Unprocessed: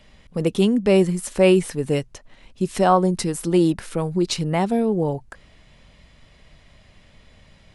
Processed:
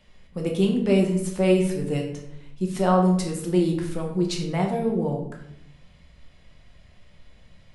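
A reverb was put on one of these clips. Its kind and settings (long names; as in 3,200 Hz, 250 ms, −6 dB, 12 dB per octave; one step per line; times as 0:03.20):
rectangular room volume 170 cubic metres, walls mixed, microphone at 0.95 metres
level −7.5 dB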